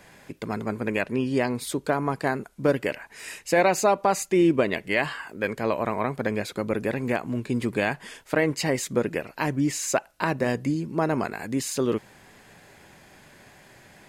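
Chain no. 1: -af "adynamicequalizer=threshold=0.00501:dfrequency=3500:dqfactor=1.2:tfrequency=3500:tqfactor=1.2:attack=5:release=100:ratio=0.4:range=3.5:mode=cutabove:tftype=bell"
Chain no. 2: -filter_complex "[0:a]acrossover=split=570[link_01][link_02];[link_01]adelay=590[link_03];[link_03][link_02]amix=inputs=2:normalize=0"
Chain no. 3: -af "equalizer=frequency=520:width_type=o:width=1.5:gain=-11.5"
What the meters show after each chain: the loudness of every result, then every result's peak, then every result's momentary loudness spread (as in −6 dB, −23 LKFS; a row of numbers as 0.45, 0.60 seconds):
−26.0, −27.5, −30.5 LKFS; −6.0, −6.5, −9.5 dBFS; 9, 7, 7 LU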